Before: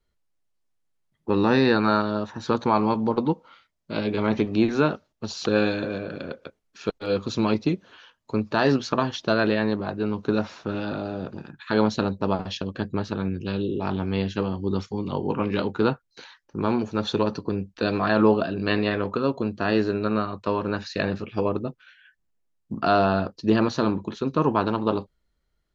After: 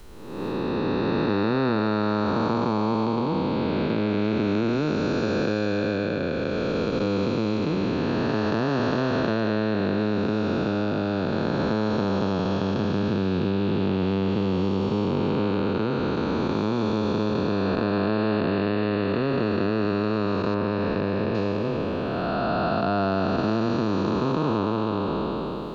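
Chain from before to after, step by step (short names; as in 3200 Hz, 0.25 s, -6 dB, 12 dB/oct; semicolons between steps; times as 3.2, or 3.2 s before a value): time blur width 0.859 s; 20.54–21.35 air absorption 250 m; three-band squash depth 100%; gain +3.5 dB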